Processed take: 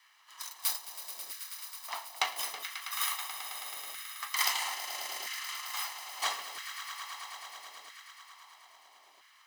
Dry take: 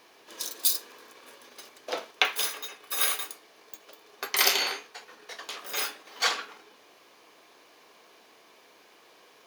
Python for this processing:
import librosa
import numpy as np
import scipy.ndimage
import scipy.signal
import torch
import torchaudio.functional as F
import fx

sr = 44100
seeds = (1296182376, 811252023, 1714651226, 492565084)

y = fx.lower_of_two(x, sr, delay_ms=1.0)
y = fx.echo_swell(y, sr, ms=108, loudest=5, wet_db=-13)
y = fx.filter_lfo_highpass(y, sr, shape='saw_down', hz=0.76, low_hz=470.0, high_hz=1600.0, q=1.8)
y = y * 10.0 ** (-6.0 / 20.0)